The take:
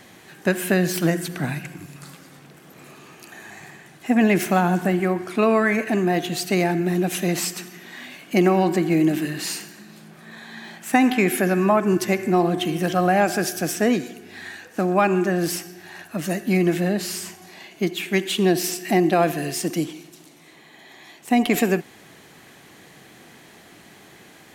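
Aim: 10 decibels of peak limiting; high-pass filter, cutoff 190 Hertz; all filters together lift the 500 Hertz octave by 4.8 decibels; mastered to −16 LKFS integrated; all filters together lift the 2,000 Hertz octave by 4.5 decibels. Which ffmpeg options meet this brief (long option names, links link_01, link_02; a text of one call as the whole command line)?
ffmpeg -i in.wav -af "highpass=190,equalizer=frequency=500:width_type=o:gain=7,equalizer=frequency=2000:width_type=o:gain=5,volume=6dB,alimiter=limit=-5.5dB:level=0:latency=1" out.wav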